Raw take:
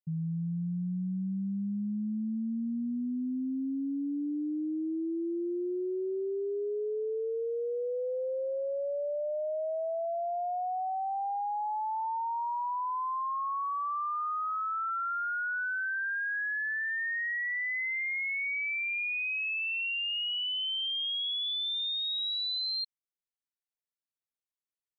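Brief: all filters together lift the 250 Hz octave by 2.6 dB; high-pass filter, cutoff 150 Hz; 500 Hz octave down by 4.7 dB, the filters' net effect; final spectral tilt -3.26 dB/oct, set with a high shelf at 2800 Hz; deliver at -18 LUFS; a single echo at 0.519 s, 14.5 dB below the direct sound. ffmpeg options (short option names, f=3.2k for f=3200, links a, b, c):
-af "highpass=150,equalizer=f=250:t=o:g=6.5,equalizer=f=500:t=o:g=-8,highshelf=f=2.8k:g=-9,aecho=1:1:519:0.188,volume=15.5dB"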